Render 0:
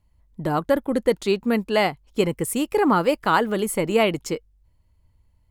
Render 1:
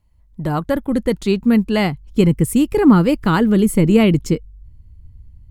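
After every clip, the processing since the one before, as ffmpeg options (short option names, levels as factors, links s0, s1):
-af "asubboost=boost=9.5:cutoff=240,volume=1.19"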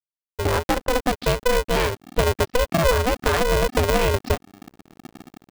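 -af "acompressor=threshold=0.1:ratio=4,aresample=11025,aeval=exprs='sgn(val(0))*max(abs(val(0))-0.01,0)':c=same,aresample=44100,aeval=exprs='val(0)*sgn(sin(2*PI*250*n/s))':c=same,volume=1.41"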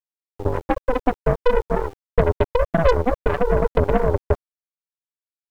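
-af "afftfilt=real='re*gte(hypot(re,im),0.316)':imag='im*gte(hypot(re,im),0.316)':win_size=1024:overlap=0.75,aeval=exprs='0.355*(cos(1*acos(clip(val(0)/0.355,-1,1)))-cos(1*PI/2))+0.0501*(cos(3*acos(clip(val(0)/0.355,-1,1)))-cos(3*PI/2))+0.0282*(cos(6*acos(clip(val(0)/0.355,-1,1)))-cos(6*PI/2))+0.0224*(cos(7*acos(clip(val(0)/0.355,-1,1)))-cos(7*PI/2))':c=same,aeval=exprs='val(0)*gte(abs(val(0)),0.00562)':c=same,volume=1.78"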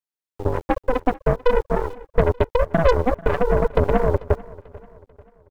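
-af "aecho=1:1:441|882|1323:0.0891|0.0401|0.018"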